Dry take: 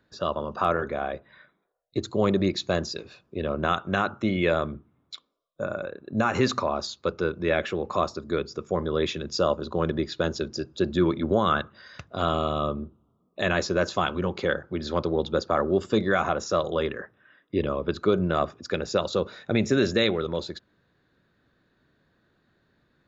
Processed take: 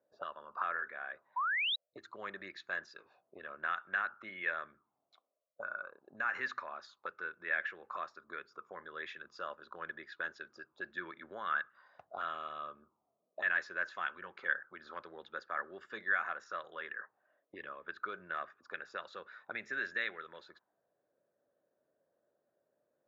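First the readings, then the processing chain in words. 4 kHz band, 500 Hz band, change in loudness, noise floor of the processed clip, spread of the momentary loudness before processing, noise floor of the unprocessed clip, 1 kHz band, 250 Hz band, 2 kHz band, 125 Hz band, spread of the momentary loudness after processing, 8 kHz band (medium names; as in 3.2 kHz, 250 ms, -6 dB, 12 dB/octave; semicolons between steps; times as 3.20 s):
-12.0 dB, -24.0 dB, -12.5 dB, -84 dBFS, 11 LU, -69 dBFS, -11.5 dB, -30.0 dB, -3.0 dB, under -35 dB, 15 LU, no reading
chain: auto-wah 580–1700 Hz, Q 5.4, up, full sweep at -25 dBFS; painted sound rise, 1.36–1.76 s, 930–4000 Hz -33 dBFS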